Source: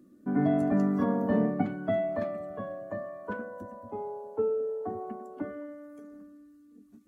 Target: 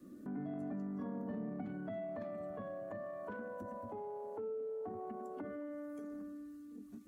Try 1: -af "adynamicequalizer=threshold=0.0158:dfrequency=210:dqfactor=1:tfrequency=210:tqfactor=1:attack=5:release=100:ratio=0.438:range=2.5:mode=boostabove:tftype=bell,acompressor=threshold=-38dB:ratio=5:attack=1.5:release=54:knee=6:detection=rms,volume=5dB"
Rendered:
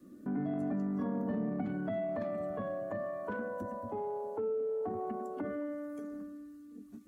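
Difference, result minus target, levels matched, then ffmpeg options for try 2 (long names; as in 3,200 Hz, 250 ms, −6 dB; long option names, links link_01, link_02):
downward compressor: peak gain reduction −7 dB
-af "adynamicequalizer=threshold=0.0158:dfrequency=210:dqfactor=1:tfrequency=210:tqfactor=1:attack=5:release=100:ratio=0.438:range=2.5:mode=boostabove:tftype=bell,acompressor=threshold=-47dB:ratio=5:attack=1.5:release=54:knee=6:detection=rms,volume=5dB"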